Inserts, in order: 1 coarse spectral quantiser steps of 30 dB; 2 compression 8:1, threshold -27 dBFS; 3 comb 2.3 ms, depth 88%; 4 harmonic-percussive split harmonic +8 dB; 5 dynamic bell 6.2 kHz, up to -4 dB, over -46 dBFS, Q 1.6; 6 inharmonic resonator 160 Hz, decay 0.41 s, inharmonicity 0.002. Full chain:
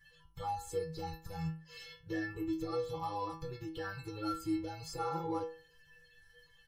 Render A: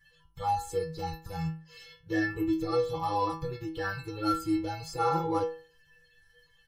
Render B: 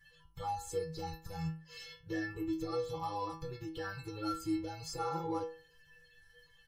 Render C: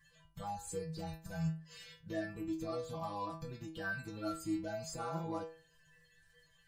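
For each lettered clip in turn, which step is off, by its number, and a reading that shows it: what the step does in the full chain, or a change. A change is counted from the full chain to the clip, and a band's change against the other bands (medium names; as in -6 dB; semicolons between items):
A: 2, mean gain reduction 5.5 dB; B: 5, 8 kHz band +3.0 dB; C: 3, 8 kHz band +5.0 dB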